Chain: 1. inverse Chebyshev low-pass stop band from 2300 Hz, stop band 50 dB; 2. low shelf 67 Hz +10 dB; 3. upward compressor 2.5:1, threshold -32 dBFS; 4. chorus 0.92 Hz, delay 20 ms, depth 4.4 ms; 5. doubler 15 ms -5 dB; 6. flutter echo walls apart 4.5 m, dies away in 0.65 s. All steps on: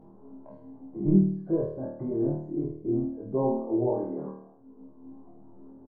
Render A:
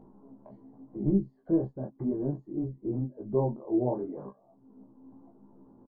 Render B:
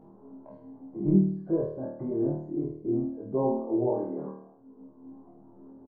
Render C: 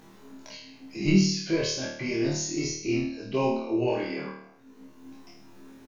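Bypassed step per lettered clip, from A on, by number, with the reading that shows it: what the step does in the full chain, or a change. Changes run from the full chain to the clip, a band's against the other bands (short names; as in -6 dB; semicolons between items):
6, momentary loudness spread change -9 LU; 2, momentary loudness spread change +4 LU; 1, 1 kHz band +2.5 dB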